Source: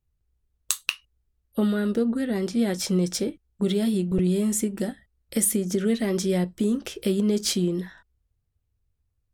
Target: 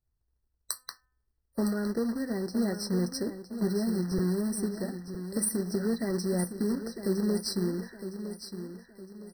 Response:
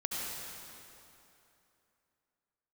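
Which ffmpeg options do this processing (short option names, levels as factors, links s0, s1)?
-filter_complex "[0:a]acrusher=bits=3:mode=log:mix=0:aa=0.000001,bandreject=f=254.2:t=h:w=4,bandreject=f=508.4:t=h:w=4,bandreject=f=762.6:t=h:w=4,bandreject=f=1016.8:t=h:w=4,bandreject=f=1271:t=h:w=4,bandreject=f=1525.2:t=h:w=4,bandreject=f=1779.4:t=h:w=4,bandreject=f=2033.6:t=h:w=4,bandreject=f=2287.8:t=h:w=4,bandreject=f=2542:t=h:w=4,bandreject=f=2796.2:t=h:w=4,asplit=2[s0][s1];[s1]aecho=0:1:961|1922|2883|3844:0.316|0.123|0.0481|0.0188[s2];[s0][s2]amix=inputs=2:normalize=0,afftfilt=real='re*eq(mod(floor(b*sr/1024/2000),2),0)':imag='im*eq(mod(floor(b*sr/1024/2000),2),0)':win_size=1024:overlap=0.75,volume=0.501"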